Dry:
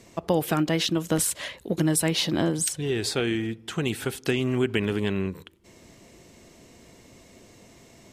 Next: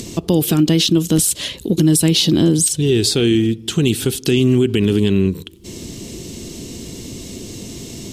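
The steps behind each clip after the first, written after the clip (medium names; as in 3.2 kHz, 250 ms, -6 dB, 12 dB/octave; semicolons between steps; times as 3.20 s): high-order bell 1.1 kHz -13 dB 2.4 oct; in parallel at +1 dB: upward compressor, threshold -29 dBFS; on the sum: peak limiter -12.5 dBFS, peak gain reduction 8.5 dB; trim +7 dB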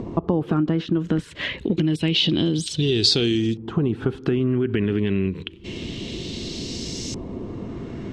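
compression, threshold -18 dBFS, peak gain reduction 9 dB; LFO low-pass saw up 0.28 Hz 940–5900 Hz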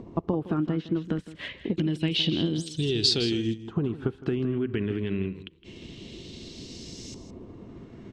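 delay 162 ms -11 dB; upward expansion 1.5:1, over -42 dBFS; trim -4 dB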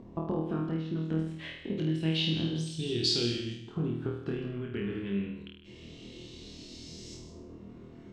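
flutter echo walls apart 4.3 m, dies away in 0.66 s; trim -8 dB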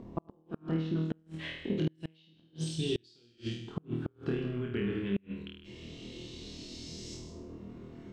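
inverted gate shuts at -22 dBFS, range -35 dB; trim +1.5 dB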